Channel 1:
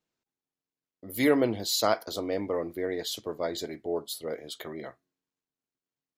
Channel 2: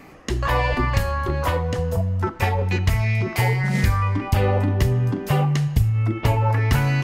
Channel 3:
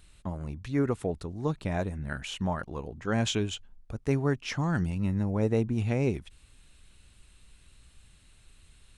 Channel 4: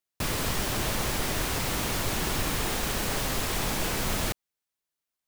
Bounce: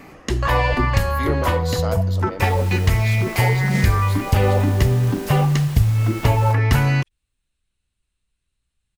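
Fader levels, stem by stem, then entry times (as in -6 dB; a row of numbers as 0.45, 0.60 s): -3.5, +2.5, -19.5, -9.0 dB; 0.00, 0.00, 0.80, 2.20 s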